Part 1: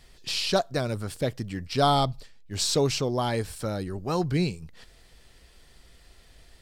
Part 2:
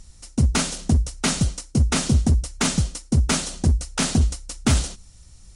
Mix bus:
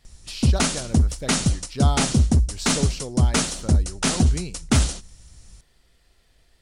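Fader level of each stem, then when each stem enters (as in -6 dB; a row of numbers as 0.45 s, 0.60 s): -6.5 dB, +0.5 dB; 0.00 s, 0.05 s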